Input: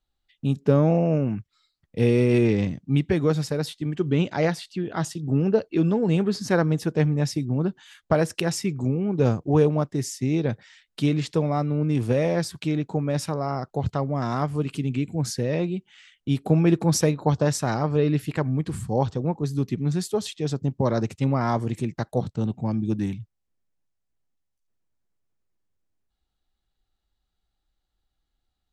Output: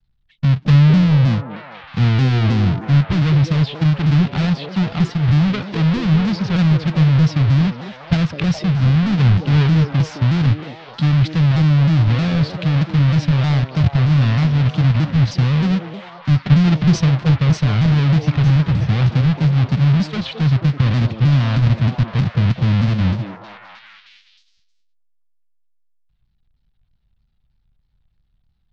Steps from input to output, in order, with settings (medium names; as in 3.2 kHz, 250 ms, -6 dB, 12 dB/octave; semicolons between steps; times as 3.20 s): square wave that keeps the level; inverse Chebyshev low-pass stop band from 9.8 kHz, stop band 50 dB; tilt shelf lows -5.5 dB, about 1.3 kHz; in parallel at -2 dB: compressor with a negative ratio -26 dBFS, ratio -0.5; on the sum: resonant low shelf 240 Hz +14 dB, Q 1.5; on a send: repeats whose band climbs or falls 213 ms, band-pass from 400 Hz, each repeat 0.7 oct, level 0 dB; on the sum: vibrato with a chosen wave saw down 3.2 Hz, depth 160 cents; trim -7 dB